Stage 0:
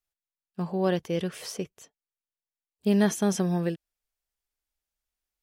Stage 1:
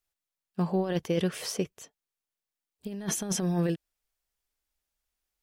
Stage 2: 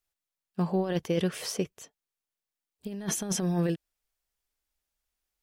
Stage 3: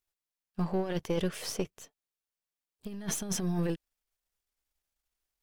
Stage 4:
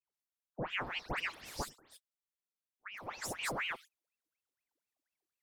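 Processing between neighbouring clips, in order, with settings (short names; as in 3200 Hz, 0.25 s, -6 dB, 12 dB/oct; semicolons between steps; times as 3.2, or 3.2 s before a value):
negative-ratio compressor -27 dBFS, ratio -0.5
nothing audible
half-wave gain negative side -7 dB
dispersion highs, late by 0.138 s, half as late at 2300 Hz; ring modulator with a swept carrier 1500 Hz, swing 80%, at 4.1 Hz; gain -5 dB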